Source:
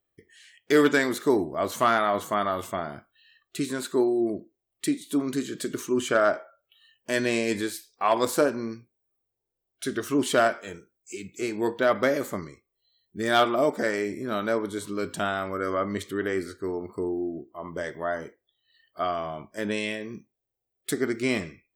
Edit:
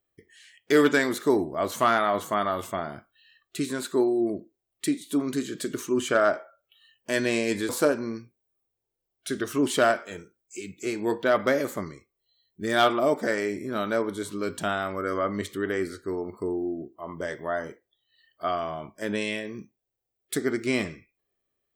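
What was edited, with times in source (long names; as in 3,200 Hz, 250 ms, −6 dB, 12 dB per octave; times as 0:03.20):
0:07.69–0:08.25: remove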